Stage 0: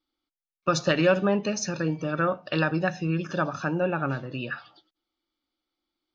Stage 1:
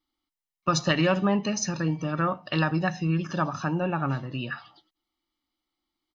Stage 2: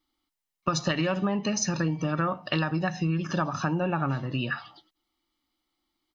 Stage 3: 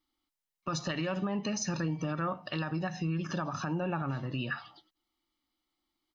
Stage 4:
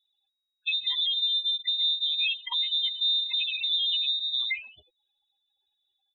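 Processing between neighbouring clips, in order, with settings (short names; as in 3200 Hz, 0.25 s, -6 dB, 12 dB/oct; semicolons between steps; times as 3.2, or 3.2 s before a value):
comb 1 ms, depth 46%
compressor, threshold -27 dBFS, peak gain reduction 9 dB; gain +4 dB
limiter -20 dBFS, peak gain reduction 7 dB; gain -4 dB
spectral contrast raised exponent 3.7; inverted band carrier 3800 Hz; gain +6.5 dB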